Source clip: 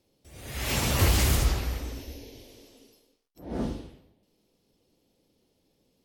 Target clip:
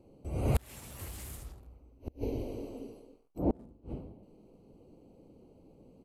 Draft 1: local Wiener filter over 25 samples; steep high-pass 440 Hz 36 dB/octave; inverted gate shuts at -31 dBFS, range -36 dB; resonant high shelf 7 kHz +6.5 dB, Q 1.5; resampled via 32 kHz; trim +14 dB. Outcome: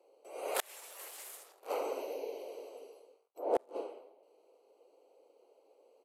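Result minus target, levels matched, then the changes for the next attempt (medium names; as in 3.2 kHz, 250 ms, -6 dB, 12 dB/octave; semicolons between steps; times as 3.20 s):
500 Hz band +5.0 dB
remove: steep high-pass 440 Hz 36 dB/octave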